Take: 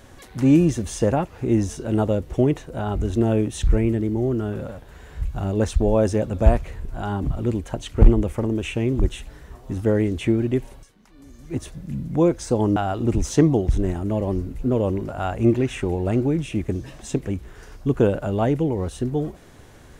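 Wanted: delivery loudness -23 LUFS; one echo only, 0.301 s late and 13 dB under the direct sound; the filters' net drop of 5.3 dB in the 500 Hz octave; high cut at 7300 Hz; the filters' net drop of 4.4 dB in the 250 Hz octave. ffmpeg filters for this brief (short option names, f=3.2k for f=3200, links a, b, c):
-af "lowpass=7.3k,equalizer=f=250:t=o:g=-4,equalizer=f=500:t=o:g=-5.5,aecho=1:1:301:0.224,volume=2.5dB"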